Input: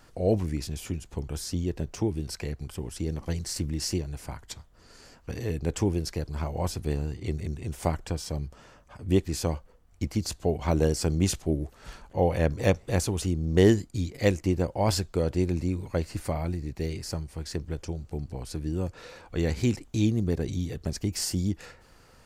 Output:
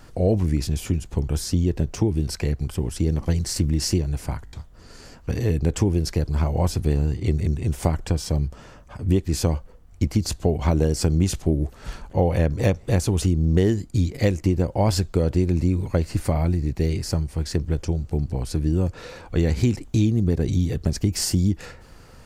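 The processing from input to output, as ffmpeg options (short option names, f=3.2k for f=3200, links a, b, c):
-filter_complex "[0:a]asplit=5[a][b][c][d][e];[a]atrim=end=4.472[f];[b]atrim=start=4.448:end=4.472[g];[c]atrim=start=4.448:end=4.472[h];[d]atrim=start=4.448:end=4.472[i];[e]atrim=start=4.528[j];[f][g]acrossfade=d=0.004:c1=hsin:c2=hsin[k];[k][h]acrossfade=d=0.004:c1=hsin:c2=hsin[l];[l][i]acrossfade=d=0.004:c1=hsin:c2=hsin[m];[m][j]acrossfade=d=0.004:c1=hsin:c2=hsin,lowshelf=f=320:g=6,acompressor=threshold=-21dB:ratio=6,volume=5.5dB"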